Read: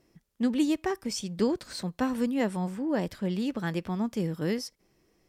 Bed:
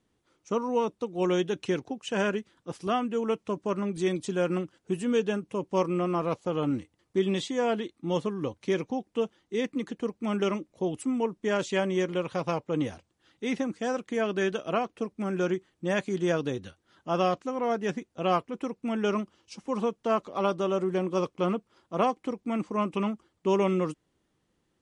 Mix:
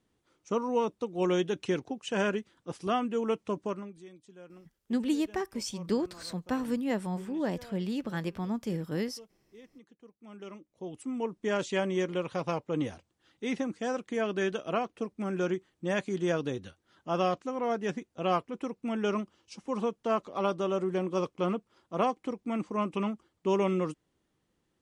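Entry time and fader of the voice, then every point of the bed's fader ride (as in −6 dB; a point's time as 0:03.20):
4.50 s, −3.0 dB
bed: 0:03.64 −1.5 dB
0:04.07 −23.5 dB
0:10.08 −23.5 dB
0:11.37 −2.5 dB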